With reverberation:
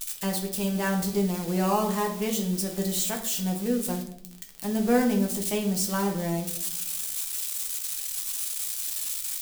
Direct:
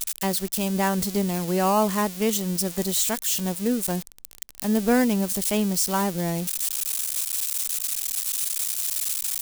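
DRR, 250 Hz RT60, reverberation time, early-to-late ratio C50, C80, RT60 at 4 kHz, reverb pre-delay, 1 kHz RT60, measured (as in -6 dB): 1.0 dB, 0.90 s, 0.65 s, 8.5 dB, 12.5 dB, 0.50 s, 6 ms, 0.55 s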